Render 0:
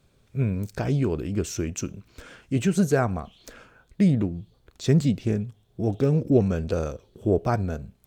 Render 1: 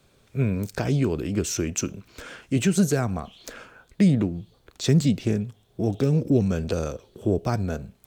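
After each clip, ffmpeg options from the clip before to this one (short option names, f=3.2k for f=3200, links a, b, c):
-filter_complex "[0:a]lowshelf=f=190:g=-8,acrossover=split=270|3000[a][b][c];[b]acompressor=threshold=-33dB:ratio=4[d];[a][d][c]amix=inputs=3:normalize=0,volume=6dB"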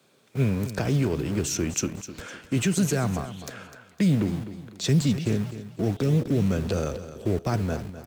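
-filter_complex "[0:a]acrossover=split=140|1600[a][b][c];[a]acrusher=bits=6:mix=0:aa=0.000001[d];[b]alimiter=limit=-18dB:level=0:latency=1[e];[d][e][c]amix=inputs=3:normalize=0,aecho=1:1:254|508|762:0.224|0.0761|0.0259"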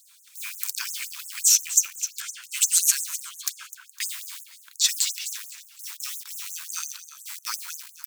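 -af "crystalizer=i=5:c=0,afftfilt=real='re*gte(b*sr/1024,860*pow(6400/860,0.5+0.5*sin(2*PI*5.7*pts/sr)))':imag='im*gte(b*sr/1024,860*pow(6400/860,0.5+0.5*sin(2*PI*5.7*pts/sr)))':win_size=1024:overlap=0.75,volume=-1dB"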